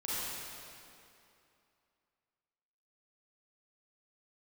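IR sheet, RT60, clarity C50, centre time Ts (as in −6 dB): 2.7 s, −6.5 dB, 199 ms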